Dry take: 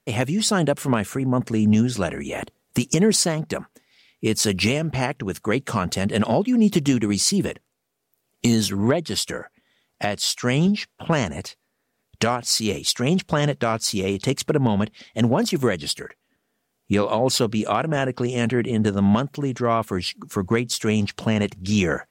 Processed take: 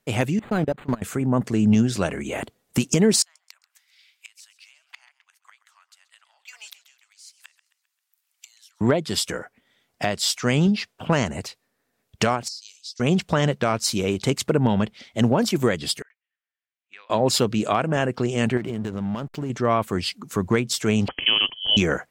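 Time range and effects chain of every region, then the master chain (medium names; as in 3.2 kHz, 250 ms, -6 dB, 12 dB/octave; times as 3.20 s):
0.39–1.02 s: CVSD coder 32 kbps + level held to a coarse grid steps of 21 dB + decimation joined by straight lines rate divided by 8×
3.22–8.81 s: Bessel high-pass 1.6 kHz, order 8 + inverted gate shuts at -26 dBFS, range -26 dB + modulated delay 132 ms, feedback 48%, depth 117 cents, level -16.5 dB
12.48–13.00 s: ladder band-pass 5.3 kHz, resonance 65% + compression 5:1, threshold -33 dBFS
16.02–17.10 s: ladder band-pass 2.8 kHz, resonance 30% + treble shelf 2.8 kHz -10.5 dB
18.57–19.50 s: compression 5:1, threshold -24 dBFS + hysteresis with a dead band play -39 dBFS + tape noise reduction on one side only encoder only
21.08–21.77 s: band-stop 1.8 kHz, Q 8.7 + frequency inversion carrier 3.2 kHz + three bands compressed up and down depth 40%
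whole clip: none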